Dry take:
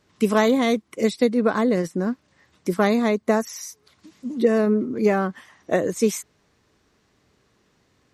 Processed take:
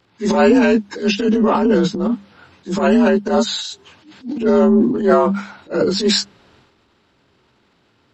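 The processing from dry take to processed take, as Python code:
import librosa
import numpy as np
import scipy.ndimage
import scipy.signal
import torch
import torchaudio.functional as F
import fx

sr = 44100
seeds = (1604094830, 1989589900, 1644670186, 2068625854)

y = fx.partial_stretch(x, sr, pct=87)
y = fx.hum_notches(y, sr, base_hz=50, count=4)
y = fx.transient(y, sr, attack_db=-11, sustain_db=8)
y = y * librosa.db_to_amplitude(8.0)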